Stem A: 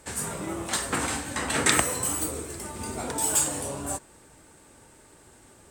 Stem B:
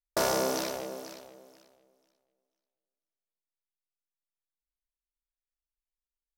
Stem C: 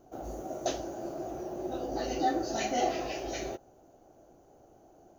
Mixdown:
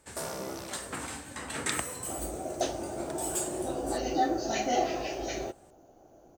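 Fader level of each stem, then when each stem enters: -10.0, -11.0, +1.5 dB; 0.00, 0.00, 1.95 s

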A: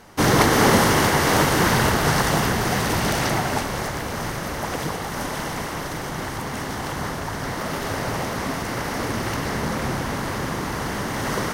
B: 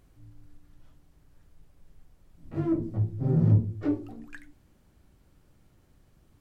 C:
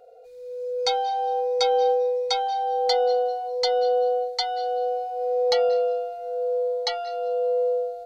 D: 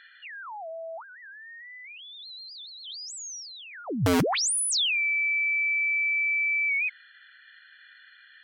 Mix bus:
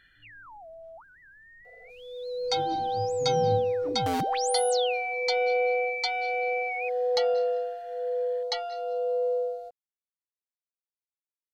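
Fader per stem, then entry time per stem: off, -11.5 dB, -4.0 dB, -8.5 dB; off, 0.00 s, 1.65 s, 0.00 s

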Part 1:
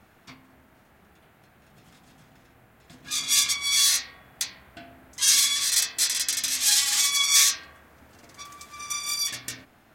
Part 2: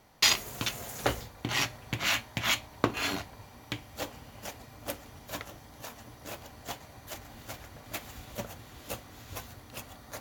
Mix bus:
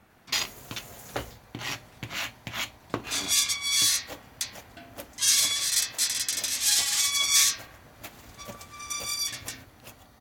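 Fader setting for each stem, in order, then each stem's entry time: -2.5, -4.5 dB; 0.00, 0.10 s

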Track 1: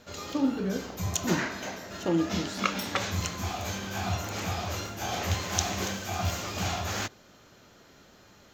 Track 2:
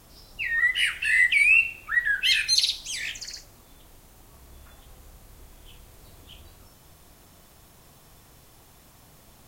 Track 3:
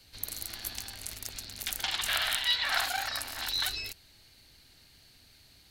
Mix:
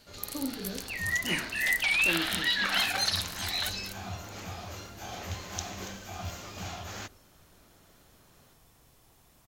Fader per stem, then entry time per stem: -8.5, -8.0, -1.5 dB; 0.00, 0.50, 0.00 s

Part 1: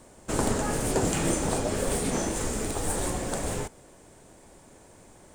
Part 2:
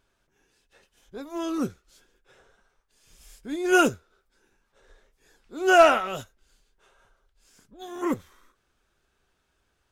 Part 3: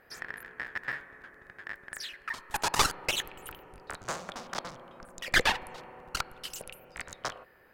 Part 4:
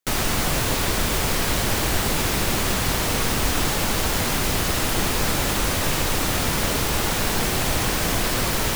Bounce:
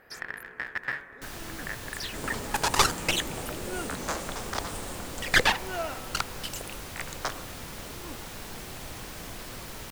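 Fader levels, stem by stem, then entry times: -11.0, -18.5, +3.0, -18.0 dB; 1.85, 0.00, 0.00, 1.15 s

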